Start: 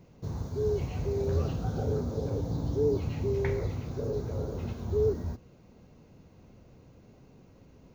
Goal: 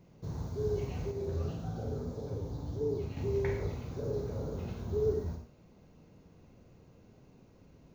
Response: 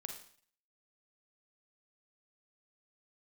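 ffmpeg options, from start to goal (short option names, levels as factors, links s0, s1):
-filter_complex "[1:a]atrim=start_sample=2205,afade=t=out:st=0.2:d=0.01,atrim=end_sample=9261[s0];[0:a][s0]afir=irnorm=-1:irlink=0,asettb=1/sr,asplit=3[s1][s2][s3];[s1]atrim=end=1.114[s4];[s2]atrim=start=1.11:end=3.17,asetpts=PTS-STARTPTS,afade=t=in:d=0.004:c=qsin,afade=t=out:st=2.056:d=0.004:c=qsin,flanger=delay=6.7:depth=8.6:regen=-49:speed=1.7:shape=sinusoidal[s5];[s3]atrim=start=3.166[s6];[s4][s5]acrossfade=d=0.004:c1=hsin:c2=qsin[s7];[s7][s6]acrossfade=d=0.004:c1=qsin:c2=hsin"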